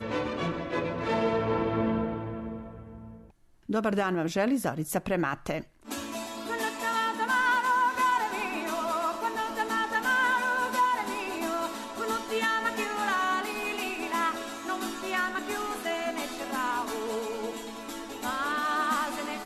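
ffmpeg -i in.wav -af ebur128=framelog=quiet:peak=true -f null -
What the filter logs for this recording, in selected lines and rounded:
Integrated loudness:
  I:         -29.3 LUFS
  Threshold: -39.5 LUFS
Loudness range:
  LRA:         4.1 LU
  Threshold: -49.5 LUFS
  LRA low:   -31.5 LUFS
  LRA high:  -27.4 LUFS
True peak:
  Peak:      -16.1 dBFS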